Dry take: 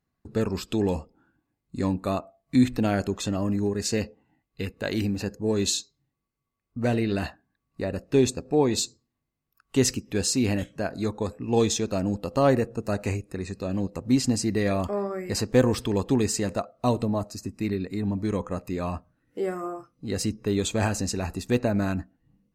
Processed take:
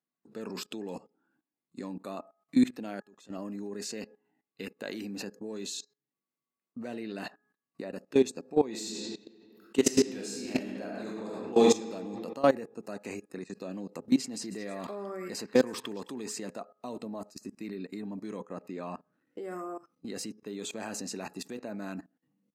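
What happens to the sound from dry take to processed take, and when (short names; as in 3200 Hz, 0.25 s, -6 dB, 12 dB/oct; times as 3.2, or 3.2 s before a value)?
3–3.96 fade in
8.69–11.71 reverb throw, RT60 1.9 s, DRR -4.5 dB
14.02–16.38 delay with a stepping band-pass 0.106 s, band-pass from 1500 Hz, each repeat 1.4 oct, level -5 dB
18.5–19.4 LPF 3000 Hz -> 5500 Hz 6 dB/oct
whole clip: HPF 190 Hz 24 dB/oct; de-hum 418.9 Hz, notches 4; level quantiser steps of 19 dB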